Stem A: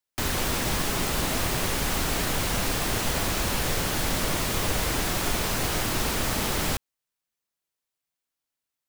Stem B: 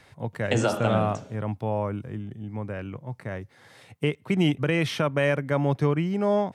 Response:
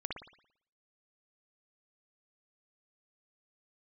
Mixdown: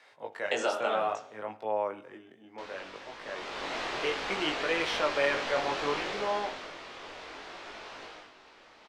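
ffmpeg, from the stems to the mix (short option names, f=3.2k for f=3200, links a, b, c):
-filter_complex "[0:a]lowpass=4k,adelay=2400,volume=-0.5dB,afade=t=in:st=3.2:d=0.6:silence=0.237137,afade=t=out:st=5.97:d=0.76:silence=0.316228,afade=t=out:st=8.02:d=0.3:silence=0.281838[a];[1:a]highpass=f=360:p=1,volume=0dB,asplit=2[b][c];[c]volume=-13.5dB[d];[2:a]atrim=start_sample=2205[e];[d][e]afir=irnorm=-1:irlink=0[f];[a][b][f]amix=inputs=3:normalize=0,acrossover=split=330 7000:gain=0.0794 1 0.224[g][h][i];[g][h][i]amix=inputs=3:normalize=0,flanger=delay=18.5:depth=4.1:speed=0.63"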